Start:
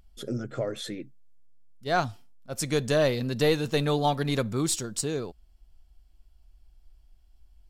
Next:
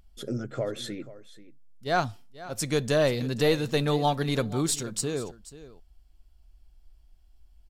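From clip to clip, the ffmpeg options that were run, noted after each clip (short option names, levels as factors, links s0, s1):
-af "aecho=1:1:484:0.141"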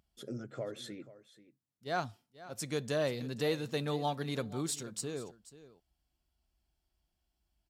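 -af "highpass=100,volume=0.355"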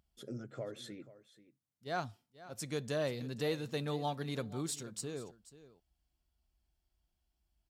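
-af "lowshelf=f=93:g=5,volume=0.708"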